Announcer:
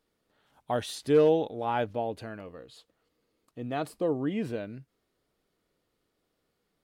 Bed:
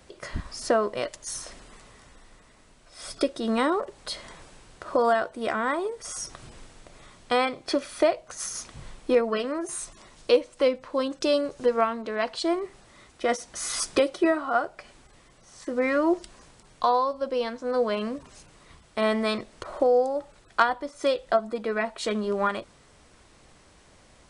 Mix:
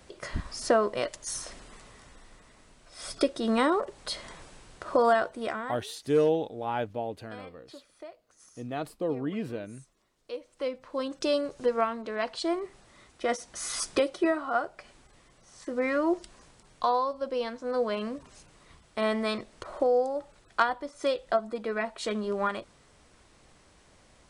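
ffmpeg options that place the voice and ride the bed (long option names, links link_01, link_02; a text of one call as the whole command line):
ffmpeg -i stem1.wav -i stem2.wav -filter_complex "[0:a]adelay=5000,volume=-2dB[link_01];[1:a]volume=19.5dB,afade=type=out:start_time=5.27:duration=0.54:silence=0.0707946,afade=type=in:start_time=10.24:duration=0.97:silence=0.1[link_02];[link_01][link_02]amix=inputs=2:normalize=0" out.wav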